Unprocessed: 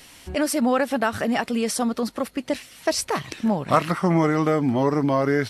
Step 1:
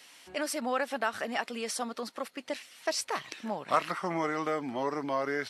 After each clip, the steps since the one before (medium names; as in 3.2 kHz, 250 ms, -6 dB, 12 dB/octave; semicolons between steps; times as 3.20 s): frequency weighting A; trim -7 dB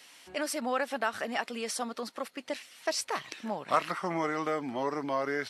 no audible change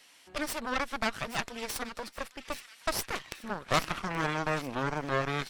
Chebyshev shaper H 3 -18 dB, 8 -13 dB, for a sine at -11.5 dBFS; feedback echo behind a high-pass 827 ms, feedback 44%, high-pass 2 kHz, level -12.5 dB